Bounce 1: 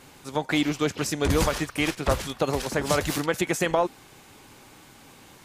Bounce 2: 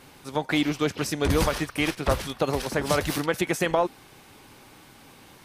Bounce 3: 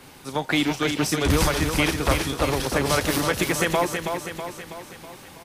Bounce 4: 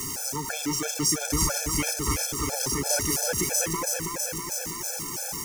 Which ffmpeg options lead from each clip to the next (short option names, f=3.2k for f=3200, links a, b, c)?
-af "equalizer=f=7.1k:t=o:w=0.29:g=-6"
-filter_complex "[0:a]acrossover=split=120|930|4100[a][b][c][d];[b]alimiter=limit=-21dB:level=0:latency=1[e];[d]asplit=2[f][g];[g]adelay=35,volume=-2.5dB[h];[f][h]amix=inputs=2:normalize=0[i];[a][e][c][i]amix=inputs=4:normalize=0,aecho=1:1:324|648|972|1296|1620|1944|2268:0.501|0.276|0.152|0.0834|0.0459|0.0252|0.0139,volume=3.5dB"
-af "aeval=exprs='val(0)+0.5*0.0668*sgn(val(0))':c=same,highshelf=f=4.7k:t=q:w=3:g=8,afftfilt=real='re*gt(sin(2*PI*3*pts/sr)*(1-2*mod(floor(b*sr/1024/450),2)),0)':imag='im*gt(sin(2*PI*3*pts/sr)*(1-2*mod(floor(b*sr/1024/450),2)),0)':win_size=1024:overlap=0.75,volume=-6.5dB"